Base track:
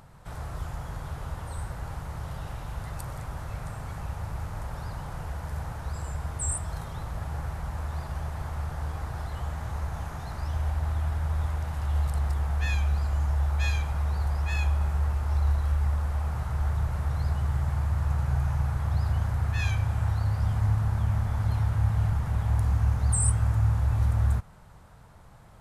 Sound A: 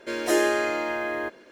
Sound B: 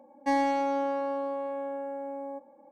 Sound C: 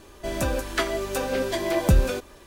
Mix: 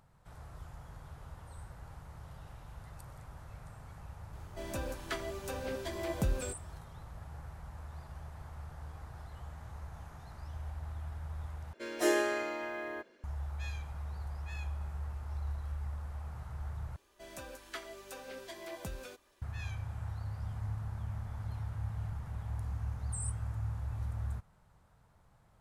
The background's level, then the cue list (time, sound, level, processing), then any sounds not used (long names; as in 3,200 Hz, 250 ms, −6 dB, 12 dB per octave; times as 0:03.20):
base track −13.5 dB
0:04.33: mix in C −13 dB
0:11.73: overwrite with A −6 dB + expander for the loud parts, over −31 dBFS
0:16.96: overwrite with C −16.5 dB + low-shelf EQ 480 Hz −9.5 dB
not used: B